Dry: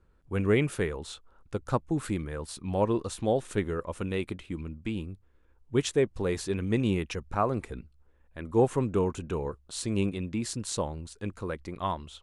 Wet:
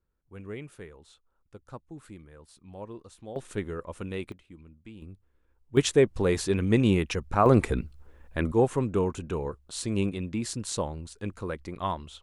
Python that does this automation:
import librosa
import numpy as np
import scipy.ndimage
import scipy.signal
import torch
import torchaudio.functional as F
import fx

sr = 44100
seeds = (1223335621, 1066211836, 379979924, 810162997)

y = fx.gain(x, sr, db=fx.steps((0.0, -15.0), (3.36, -3.5), (4.32, -13.5), (5.02, -5.0), (5.77, 4.5), (7.46, 11.5), (8.52, 0.5)))